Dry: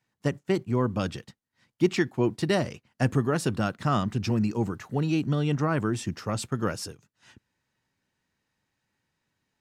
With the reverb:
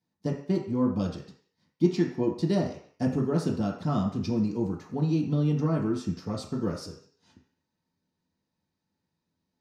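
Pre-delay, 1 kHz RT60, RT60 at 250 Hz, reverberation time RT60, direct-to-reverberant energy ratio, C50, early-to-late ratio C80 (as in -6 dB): 3 ms, 0.55 s, 0.50 s, 0.55 s, -3.5 dB, 6.5 dB, 10.0 dB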